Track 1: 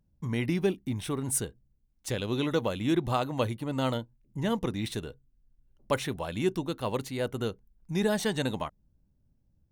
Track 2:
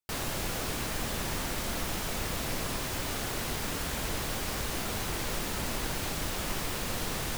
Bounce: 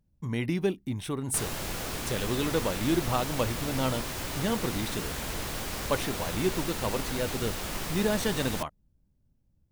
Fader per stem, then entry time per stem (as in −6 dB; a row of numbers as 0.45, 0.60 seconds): −0.5, −1.0 decibels; 0.00, 1.25 seconds